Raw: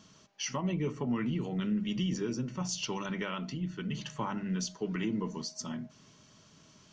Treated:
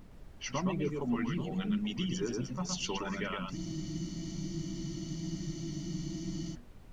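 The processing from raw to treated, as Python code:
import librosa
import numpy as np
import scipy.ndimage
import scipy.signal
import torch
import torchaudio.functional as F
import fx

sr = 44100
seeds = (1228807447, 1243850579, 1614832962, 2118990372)

y = fx.env_lowpass(x, sr, base_hz=470.0, full_db=-29.0)
y = fx.dereverb_blind(y, sr, rt60_s=2.0)
y = fx.dmg_noise_colour(y, sr, seeds[0], colour='brown', level_db=-51.0)
y = fx.echo_multitap(y, sr, ms=(116, 410, 832), db=(-4.0, -18.5, -16.0))
y = fx.spec_freeze(y, sr, seeds[1], at_s=3.58, hold_s=2.95)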